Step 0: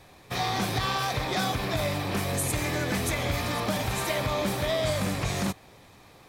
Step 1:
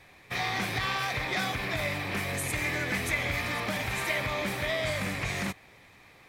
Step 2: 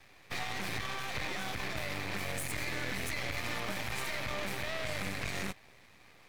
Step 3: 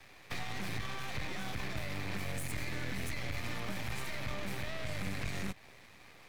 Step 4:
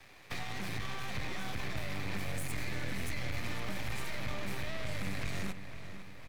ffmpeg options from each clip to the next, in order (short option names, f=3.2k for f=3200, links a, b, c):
-af "equalizer=f=2.1k:w=1.6:g=11,volume=-5.5dB"
-af "alimiter=limit=-23dB:level=0:latency=1:release=46,aeval=exprs='max(val(0),0)':c=same"
-filter_complex "[0:a]acrossover=split=260[a][b];[b]acompressor=threshold=-42dB:ratio=6[c];[a][c]amix=inputs=2:normalize=0,volume=2.5dB"
-filter_complex "[0:a]asplit=2[a][b];[b]adelay=501,lowpass=f=3.7k:p=1,volume=-10dB,asplit=2[c][d];[d]adelay=501,lowpass=f=3.7k:p=1,volume=0.51,asplit=2[e][f];[f]adelay=501,lowpass=f=3.7k:p=1,volume=0.51,asplit=2[g][h];[h]adelay=501,lowpass=f=3.7k:p=1,volume=0.51,asplit=2[i][j];[j]adelay=501,lowpass=f=3.7k:p=1,volume=0.51,asplit=2[k][l];[l]adelay=501,lowpass=f=3.7k:p=1,volume=0.51[m];[a][c][e][g][i][k][m]amix=inputs=7:normalize=0"